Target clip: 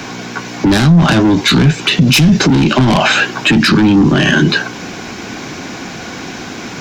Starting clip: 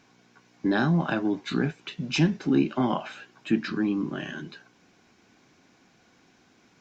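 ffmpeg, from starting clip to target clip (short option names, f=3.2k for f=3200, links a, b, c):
-filter_complex "[0:a]acrossover=split=150[a][b];[b]asoftclip=type=tanh:threshold=-28.5dB[c];[a][c]amix=inputs=2:normalize=0,acrossover=split=140|3000[d][e][f];[e]acompressor=threshold=-39dB:ratio=6[g];[d][g][f]amix=inputs=3:normalize=0,alimiter=level_in=35.5dB:limit=-1dB:release=50:level=0:latency=1,volume=-1dB"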